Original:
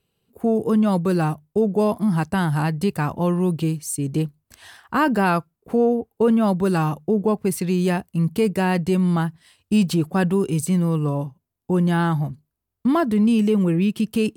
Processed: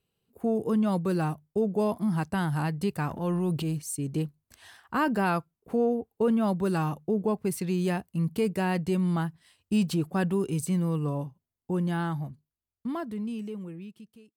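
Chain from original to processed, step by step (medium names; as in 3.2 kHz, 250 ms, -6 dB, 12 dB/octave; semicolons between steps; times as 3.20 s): fade out at the end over 3.15 s; 3.08–3.82 s: transient shaper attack -5 dB, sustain +7 dB; trim -7 dB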